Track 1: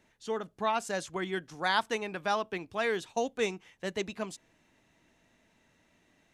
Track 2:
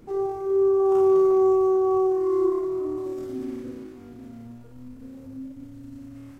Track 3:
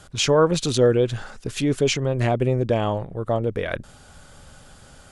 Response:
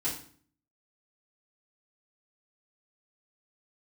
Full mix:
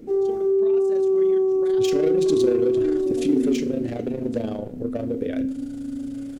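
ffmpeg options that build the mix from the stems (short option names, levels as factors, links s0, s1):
-filter_complex "[0:a]acompressor=threshold=0.0178:ratio=6,volume=0.596,asplit=2[s0][s1];[s1]volume=0.141[s2];[1:a]alimiter=limit=0.0708:level=0:latency=1,volume=1.06[s3];[2:a]asoftclip=type=hard:threshold=0.119,adelay=1650,volume=0.891,asplit=2[s4][s5];[s5]volume=0.0794[s6];[s0][s4]amix=inputs=2:normalize=0,tremolo=f=27:d=0.824,acompressor=threshold=0.0282:ratio=6,volume=1[s7];[3:a]atrim=start_sample=2205[s8];[s2][s6]amix=inputs=2:normalize=0[s9];[s9][s8]afir=irnorm=-1:irlink=0[s10];[s3][s7][s10]amix=inputs=3:normalize=0,equalizer=f=125:t=o:w=1:g=-4,equalizer=f=250:t=o:w=1:g=11,equalizer=f=500:t=o:w=1:g=7,equalizer=f=1000:t=o:w=1:g=-10"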